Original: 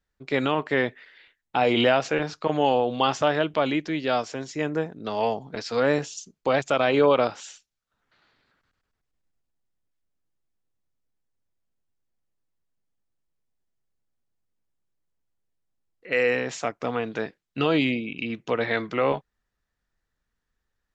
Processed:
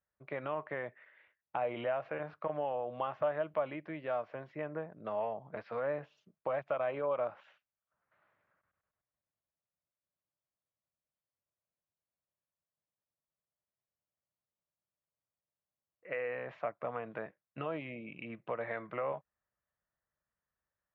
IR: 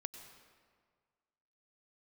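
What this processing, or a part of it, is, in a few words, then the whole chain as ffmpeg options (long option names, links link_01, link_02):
bass amplifier: -af "acompressor=threshold=-27dB:ratio=3,highpass=81,equalizer=frequency=260:width_type=q:width=4:gain=-9,equalizer=frequency=410:width_type=q:width=4:gain=-5,equalizer=frequency=600:width_type=q:width=4:gain=9,equalizer=frequency=1100:width_type=q:width=4:gain=5,lowpass=frequency=2300:width=0.5412,lowpass=frequency=2300:width=1.3066,volume=-9dB"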